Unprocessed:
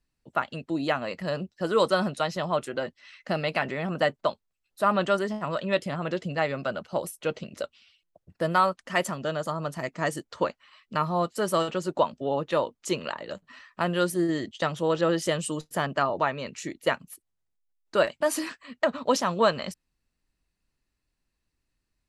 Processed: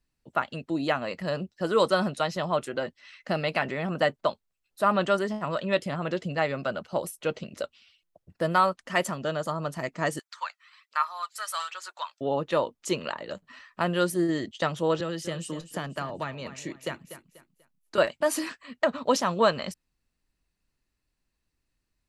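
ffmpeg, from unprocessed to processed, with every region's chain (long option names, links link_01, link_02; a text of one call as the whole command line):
ffmpeg -i in.wav -filter_complex "[0:a]asettb=1/sr,asplit=3[link_01][link_02][link_03];[link_01]atrim=end=10.194[link_04];[link_02]atrim=start=10.19:end=12.21,asetpts=PTS-STARTPTS,afade=type=in:duration=0.004:curve=qsin,afade=type=out:start_time=2.016:duration=0.004:curve=qsin,highpass=frequency=1100:width=0.5412,highpass=frequency=1100:width=1.3066,bandreject=frequency=2900:width=12,aphaser=in_gain=1:out_gain=1:delay=1.6:decay=0.42:speed=1.2:type=sinusoidal[link_05];[link_03]atrim=start=12.206[link_06];[link_04][link_05]acrossfade=duration=0.004:curve1=hsin:curve2=qsin[link_07];[link_07][link_06]acrossfade=duration=0.004:curve1=qsin:curve2=hsin,asettb=1/sr,asplit=3[link_08][link_09][link_10];[link_08]atrim=end=15.004[link_11];[link_09]atrim=start=15:end=17.98,asetpts=PTS-STARTPTS,afade=type=in:duration=0.004:curve=qsin,afade=type=out:start_time=2.976:duration=0.004:curve=qsin,acrossover=split=220|2000|7700[link_12][link_13][link_14][link_15];[link_12]acompressor=threshold=-37dB:ratio=3[link_16];[link_13]acompressor=threshold=-35dB:ratio=3[link_17];[link_14]acompressor=threshold=-42dB:ratio=3[link_18];[link_15]acompressor=threshold=-51dB:ratio=3[link_19];[link_16][link_17][link_18][link_19]amix=inputs=4:normalize=0,aecho=1:1:244|488|732:0.237|0.0759|0.0243,atrim=end_sample=131418[link_20];[link_10]atrim=start=17.976[link_21];[link_11][link_20]acrossfade=duration=0.004:curve1=hsin:curve2=qsin[link_22];[link_22][link_21]acrossfade=duration=0.004:curve1=qsin:curve2=hsin" out.wav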